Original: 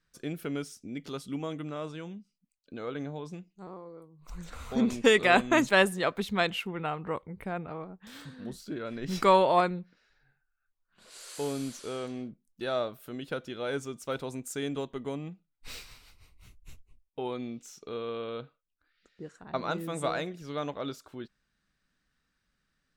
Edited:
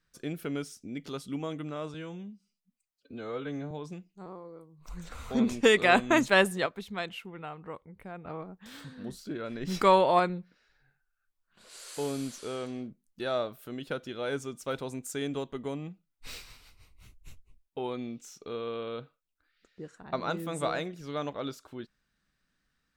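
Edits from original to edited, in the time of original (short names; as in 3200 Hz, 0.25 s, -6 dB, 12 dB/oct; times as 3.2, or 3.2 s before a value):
1.94–3.12 stretch 1.5×
6.07–7.66 gain -8 dB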